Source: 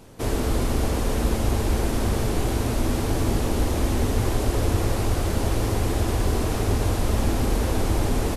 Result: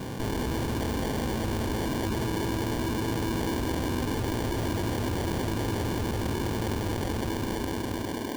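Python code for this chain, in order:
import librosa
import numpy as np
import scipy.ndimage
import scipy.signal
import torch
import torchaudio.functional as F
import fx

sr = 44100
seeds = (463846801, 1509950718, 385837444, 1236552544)

y = fx.fade_out_tail(x, sr, length_s=2.54)
y = scipy.signal.sosfilt(scipy.signal.butter(2, 120.0, 'highpass', fs=sr, output='sos'), y)
y = fx.tube_stage(y, sr, drive_db=31.0, bias=0.75)
y = fx.tilt_eq(y, sr, slope=-2.0)
y = fx.notch(y, sr, hz=590.0, q=12.0)
y = fx.echo_wet_bandpass(y, sr, ms=203, feedback_pct=81, hz=450.0, wet_db=-6)
y = fx.sample_hold(y, sr, seeds[0], rate_hz=1300.0, jitter_pct=0)
y = fx.peak_eq(y, sr, hz=2000.0, db=-4.0, octaves=0.28)
y = fx.env_flatten(y, sr, amount_pct=70)
y = F.gain(torch.from_numpy(y), -2.0).numpy()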